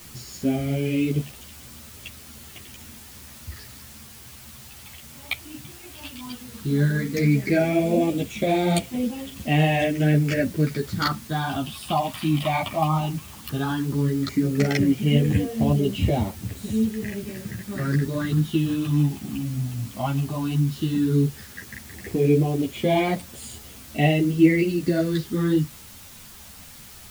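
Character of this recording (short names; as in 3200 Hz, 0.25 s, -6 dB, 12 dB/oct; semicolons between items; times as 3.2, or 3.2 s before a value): phasing stages 6, 0.14 Hz, lowest notch 430–1500 Hz; a quantiser's noise floor 8-bit, dither triangular; a shimmering, thickened sound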